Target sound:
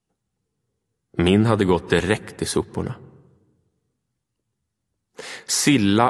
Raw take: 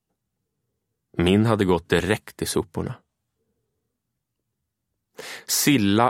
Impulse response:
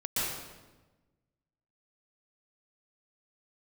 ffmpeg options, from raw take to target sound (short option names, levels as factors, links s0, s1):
-filter_complex "[0:a]bandreject=f=640:w=20,asplit=2[s0][s1];[1:a]atrim=start_sample=2205,lowpass=2200[s2];[s1][s2]afir=irnorm=-1:irlink=0,volume=0.0422[s3];[s0][s3]amix=inputs=2:normalize=0,volume=1.19" -ar 24000 -c:a aac -b:a 64k